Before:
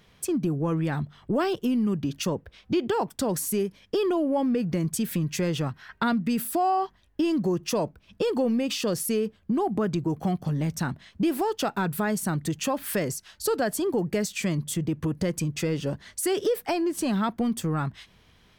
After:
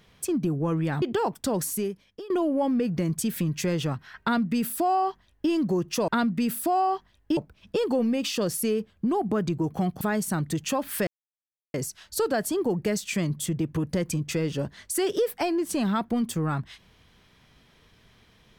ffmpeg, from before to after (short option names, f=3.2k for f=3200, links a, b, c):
-filter_complex "[0:a]asplit=7[a][b][c][d][e][f][g];[a]atrim=end=1.022[h];[b]atrim=start=2.768:end=4.05,asetpts=PTS-STARTPTS,afade=t=out:st=0.622:d=0.66:silence=0.0841395[i];[c]atrim=start=4.05:end=7.832,asetpts=PTS-STARTPTS,afade=t=in:d=0.004:c=hsin:silence=0.0841395[j];[d]atrim=start=5.968:end=7.262[k];[e]atrim=start=7.828:end=10.472[l];[f]atrim=start=11.958:end=13.02,asetpts=PTS-STARTPTS,afade=t=out:st=1.058:d=0.004:c=hsin,apad=pad_dur=0.67[m];[g]atrim=start=13.02,asetpts=PTS-STARTPTS,afade=t=in:d=0.004:c=hsin[n];[i][j]concat=n=2:v=0:a=1[o];[h][o]acrossfade=d=0.004:c1=hsin:c2=hsin[p];[p][k]acrossfade=d=0.004:c1=hsin:c2=hsin[q];[q][l]acrossfade=d=0.004:c1=hsin:c2=hsin[r];[m][n]concat=n=2:v=0:a=1[s];[r][s]acrossfade=d=0.004:c1=hsin:c2=hsin"